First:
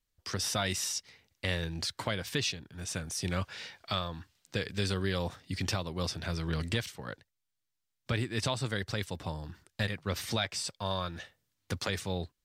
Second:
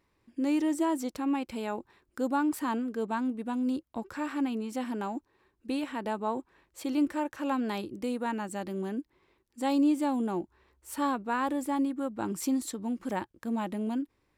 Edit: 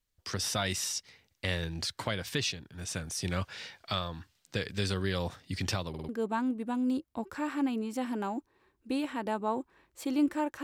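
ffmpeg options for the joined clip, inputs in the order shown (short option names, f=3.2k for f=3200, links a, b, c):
-filter_complex "[0:a]apad=whole_dur=10.63,atrim=end=10.63,asplit=4[a][b][c][d];[a]atrim=end=5.942[e];[b]atrim=start=5.888:end=5.942[f];[c]atrim=start=5.888:end=5.942[g];[d]atrim=start=5.888:end=5.942[h];[1:a]atrim=start=2.878:end=7.42[i];[e][f]acrossfade=d=0.004:c1=hsin:c2=hsin[j];[j][g]acrossfade=d=0.004:c1=hsin:c2=hsin[k];[k][h]acrossfade=d=0.004:c1=hsin:c2=hsin[l];[l][i]acrossfade=d=0.004:c1=hsin:c2=hsin"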